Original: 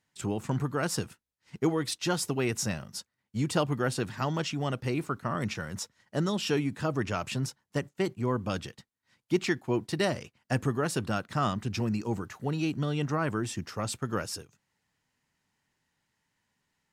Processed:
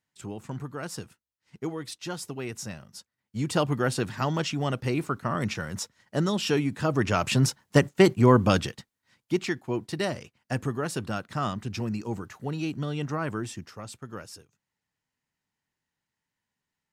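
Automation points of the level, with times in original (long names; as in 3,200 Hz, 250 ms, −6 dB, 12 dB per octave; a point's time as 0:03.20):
0:02.94 −6 dB
0:03.65 +3 dB
0:06.76 +3 dB
0:07.61 +11.5 dB
0:08.42 +11.5 dB
0:09.47 −1 dB
0:13.42 −1 dB
0:13.84 −8 dB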